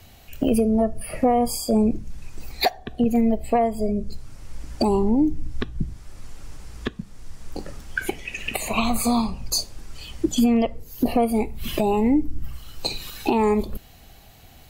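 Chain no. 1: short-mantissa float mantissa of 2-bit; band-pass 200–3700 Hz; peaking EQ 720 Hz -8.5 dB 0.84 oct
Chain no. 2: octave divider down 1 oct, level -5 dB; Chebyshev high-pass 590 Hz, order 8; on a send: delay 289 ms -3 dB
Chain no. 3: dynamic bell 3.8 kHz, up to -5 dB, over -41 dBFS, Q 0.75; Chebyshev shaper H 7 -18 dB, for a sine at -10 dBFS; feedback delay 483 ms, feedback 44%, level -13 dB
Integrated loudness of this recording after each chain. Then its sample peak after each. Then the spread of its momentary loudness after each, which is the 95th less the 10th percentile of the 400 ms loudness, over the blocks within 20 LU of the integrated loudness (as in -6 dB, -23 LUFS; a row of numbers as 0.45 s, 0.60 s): -26.5 LUFS, -28.0 LUFS, -23.5 LUFS; -11.0 dBFS, -9.0 dBFS, -9.5 dBFS; 17 LU, 18 LU, 18 LU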